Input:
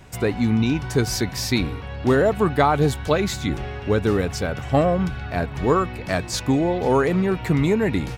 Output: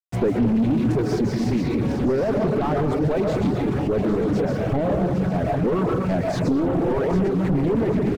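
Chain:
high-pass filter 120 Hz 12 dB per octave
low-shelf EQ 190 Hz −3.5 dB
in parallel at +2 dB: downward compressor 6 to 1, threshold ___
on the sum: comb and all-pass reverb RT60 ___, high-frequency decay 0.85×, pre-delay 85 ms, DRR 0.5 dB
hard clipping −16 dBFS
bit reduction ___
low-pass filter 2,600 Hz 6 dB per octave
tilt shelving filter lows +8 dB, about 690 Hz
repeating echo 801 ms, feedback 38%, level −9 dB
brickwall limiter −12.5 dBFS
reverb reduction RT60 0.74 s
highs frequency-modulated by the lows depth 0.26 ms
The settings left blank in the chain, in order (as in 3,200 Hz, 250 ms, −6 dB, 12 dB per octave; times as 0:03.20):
−27 dBFS, 1.1 s, 5 bits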